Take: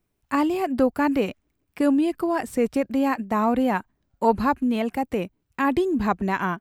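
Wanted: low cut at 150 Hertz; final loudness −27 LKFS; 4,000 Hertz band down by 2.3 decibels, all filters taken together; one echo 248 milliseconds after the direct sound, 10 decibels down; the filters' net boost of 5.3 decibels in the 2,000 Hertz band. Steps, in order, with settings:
high-pass filter 150 Hz
parametric band 2,000 Hz +8.5 dB
parametric band 4,000 Hz −8.5 dB
single-tap delay 248 ms −10 dB
level −4 dB

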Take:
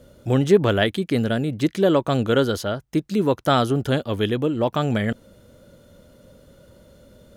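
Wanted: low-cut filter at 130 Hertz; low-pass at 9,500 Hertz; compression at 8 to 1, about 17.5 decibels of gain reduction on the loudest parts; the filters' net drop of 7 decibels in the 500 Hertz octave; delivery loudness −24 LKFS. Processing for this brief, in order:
high-pass filter 130 Hz
low-pass filter 9,500 Hz
parametric band 500 Hz −9 dB
downward compressor 8 to 1, threshold −35 dBFS
level +15.5 dB

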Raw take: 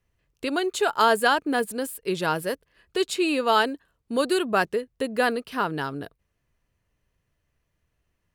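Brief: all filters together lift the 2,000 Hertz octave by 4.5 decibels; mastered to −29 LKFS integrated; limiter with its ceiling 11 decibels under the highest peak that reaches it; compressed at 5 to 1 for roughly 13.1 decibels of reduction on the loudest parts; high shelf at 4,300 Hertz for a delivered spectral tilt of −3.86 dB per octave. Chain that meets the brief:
parametric band 2,000 Hz +5.5 dB
high-shelf EQ 4,300 Hz +5 dB
downward compressor 5 to 1, threshold −28 dBFS
level +8 dB
brickwall limiter −19 dBFS

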